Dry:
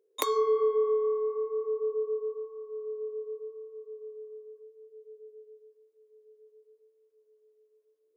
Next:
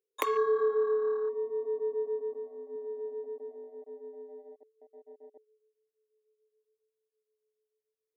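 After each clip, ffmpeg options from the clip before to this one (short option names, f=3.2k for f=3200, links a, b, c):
-af "afwtdn=0.0158,highshelf=f=2.4k:g=11,volume=-2dB"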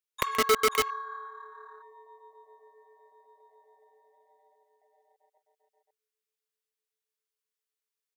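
-filter_complex "[0:a]acrossover=split=880[a][b];[a]acrusher=bits=3:mix=0:aa=0.000001[c];[b]aecho=1:1:129|530:0.355|0.631[d];[c][d]amix=inputs=2:normalize=0,volume=2.5dB"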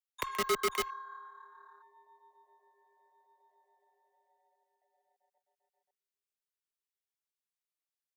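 -filter_complex "[0:a]afreqshift=-32,acrossover=split=150|470|3300[a][b][c][d];[b]acrusher=bits=5:mix=0:aa=0.5[e];[a][e][c][d]amix=inputs=4:normalize=0,volume=-7dB"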